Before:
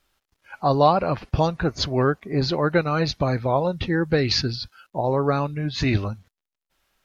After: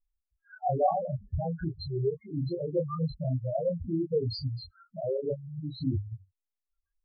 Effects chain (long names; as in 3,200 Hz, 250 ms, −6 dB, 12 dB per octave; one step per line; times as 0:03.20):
spectral peaks only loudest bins 2
chorus effect 2.7 Hz, depth 2.6 ms